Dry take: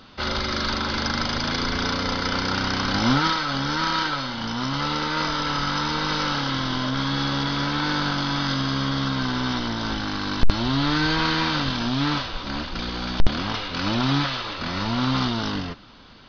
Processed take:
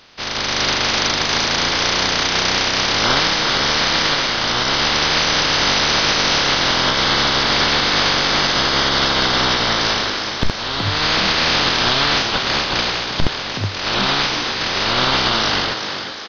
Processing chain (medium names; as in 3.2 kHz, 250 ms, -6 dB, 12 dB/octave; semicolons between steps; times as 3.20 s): spectral peaks clipped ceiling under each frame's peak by 21 dB; level rider gain up to 11.5 dB; peak limiter -7 dBFS, peak gain reduction 6 dB; frequency-shifting echo 370 ms, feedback 49%, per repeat +96 Hz, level -7.5 dB